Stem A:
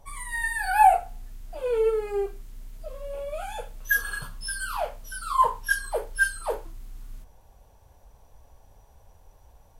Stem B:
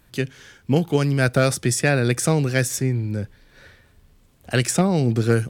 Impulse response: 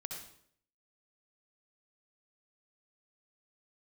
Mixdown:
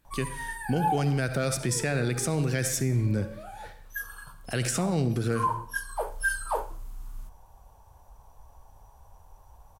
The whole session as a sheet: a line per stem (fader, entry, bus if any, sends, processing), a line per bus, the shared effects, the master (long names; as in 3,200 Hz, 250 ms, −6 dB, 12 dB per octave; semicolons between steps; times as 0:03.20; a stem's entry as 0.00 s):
+0.5 dB, 0.05 s, send −18 dB, octave-band graphic EQ 250/500/1,000/2,000/4,000 Hz −4/−5/+8/−6/−4 dB; automatic ducking −13 dB, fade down 0.90 s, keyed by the second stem
−5.5 dB, 0.00 s, send −5.5 dB, noise gate −47 dBFS, range −7 dB; speech leveller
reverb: on, RT60 0.65 s, pre-delay 59 ms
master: brickwall limiter −17.5 dBFS, peak gain reduction 9 dB